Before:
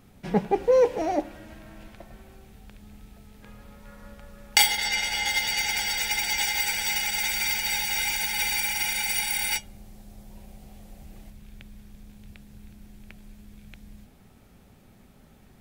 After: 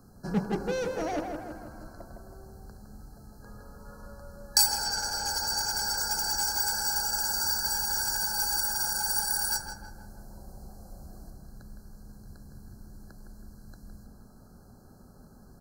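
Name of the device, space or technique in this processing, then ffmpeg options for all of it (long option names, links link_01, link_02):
one-band saturation: -filter_complex "[0:a]afftfilt=real='re*(1-between(b*sr/4096,1700,4000))':imag='im*(1-between(b*sr/4096,1700,4000))':win_size=4096:overlap=0.75,adynamicequalizer=threshold=0.00316:dfrequency=1400:dqfactor=2.4:tfrequency=1400:tqfactor=2.4:attack=5:release=100:ratio=0.375:range=1.5:mode=boostabove:tftype=bell,acrossover=split=230|2600[link_01][link_02][link_03];[link_02]asoftclip=type=tanh:threshold=-31.5dB[link_04];[link_01][link_04][link_03]amix=inputs=3:normalize=0,asplit=2[link_05][link_06];[link_06]adelay=161,lowpass=frequency=2500:poles=1,volume=-5dB,asplit=2[link_07][link_08];[link_08]adelay=161,lowpass=frequency=2500:poles=1,volume=0.54,asplit=2[link_09][link_10];[link_10]adelay=161,lowpass=frequency=2500:poles=1,volume=0.54,asplit=2[link_11][link_12];[link_12]adelay=161,lowpass=frequency=2500:poles=1,volume=0.54,asplit=2[link_13][link_14];[link_14]adelay=161,lowpass=frequency=2500:poles=1,volume=0.54,asplit=2[link_15][link_16];[link_16]adelay=161,lowpass=frequency=2500:poles=1,volume=0.54,asplit=2[link_17][link_18];[link_18]adelay=161,lowpass=frequency=2500:poles=1,volume=0.54[link_19];[link_05][link_07][link_09][link_11][link_13][link_15][link_17][link_19]amix=inputs=8:normalize=0"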